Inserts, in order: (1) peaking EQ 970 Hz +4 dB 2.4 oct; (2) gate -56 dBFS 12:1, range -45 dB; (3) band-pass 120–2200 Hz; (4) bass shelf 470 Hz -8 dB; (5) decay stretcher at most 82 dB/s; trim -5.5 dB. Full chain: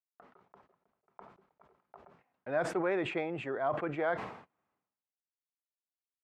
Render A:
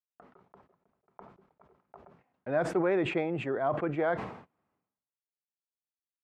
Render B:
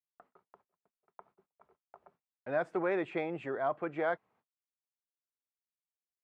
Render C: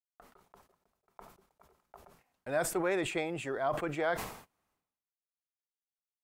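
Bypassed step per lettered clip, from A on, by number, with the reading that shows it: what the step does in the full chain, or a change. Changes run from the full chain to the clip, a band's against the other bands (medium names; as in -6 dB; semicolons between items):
4, 125 Hz band +4.5 dB; 5, momentary loudness spread change -2 LU; 3, 8 kHz band +14.0 dB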